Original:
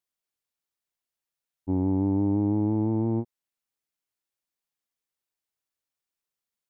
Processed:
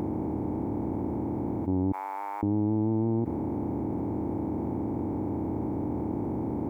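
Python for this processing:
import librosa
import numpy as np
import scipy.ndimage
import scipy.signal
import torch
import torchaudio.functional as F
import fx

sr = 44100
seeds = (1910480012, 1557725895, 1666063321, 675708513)

y = fx.bin_compress(x, sr, power=0.2)
y = fx.highpass(y, sr, hz=1200.0, slope=24, at=(1.92, 2.43))
y = fx.env_flatten(y, sr, amount_pct=70)
y = y * 10.0 ** (-4.0 / 20.0)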